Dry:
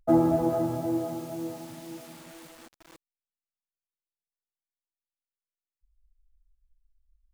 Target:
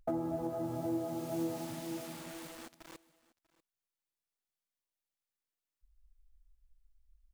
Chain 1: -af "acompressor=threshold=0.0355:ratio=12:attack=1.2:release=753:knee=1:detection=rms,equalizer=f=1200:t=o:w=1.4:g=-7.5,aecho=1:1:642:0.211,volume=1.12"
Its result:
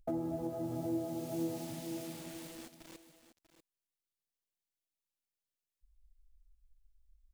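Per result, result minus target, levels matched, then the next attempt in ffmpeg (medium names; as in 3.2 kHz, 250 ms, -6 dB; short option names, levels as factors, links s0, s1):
echo-to-direct +9.5 dB; 1 kHz band -3.0 dB
-af "acompressor=threshold=0.0355:ratio=12:attack=1.2:release=753:knee=1:detection=rms,equalizer=f=1200:t=o:w=1.4:g=-7.5,aecho=1:1:642:0.0708,volume=1.12"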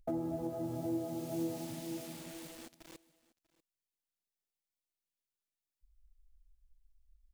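1 kHz band -3.0 dB
-af "acompressor=threshold=0.0355:ratio=12:attack=1.2:release=753:knee=1:detection=rms,aecho=1:1:642:0.0708,volume=1.12"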